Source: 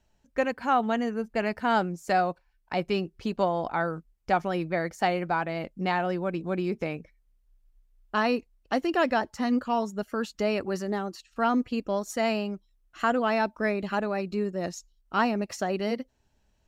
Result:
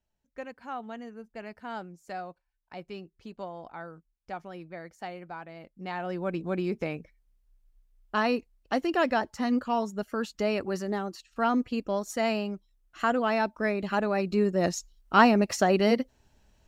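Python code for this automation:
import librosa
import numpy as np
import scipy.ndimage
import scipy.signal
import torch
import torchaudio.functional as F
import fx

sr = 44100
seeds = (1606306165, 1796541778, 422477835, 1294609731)

y = fx.gain(x, sr, db=fx.line((5.68, -13.5), (6.29, -1.0), (13.72, -1.0), (14.67, 6.0)))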